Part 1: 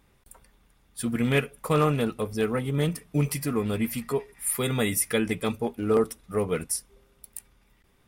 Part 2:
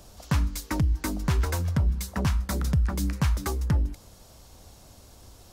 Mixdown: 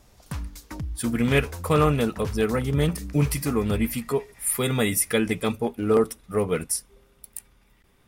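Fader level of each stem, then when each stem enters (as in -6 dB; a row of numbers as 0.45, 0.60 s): +2.5, -8.5 dB; 0.00, 0.00 s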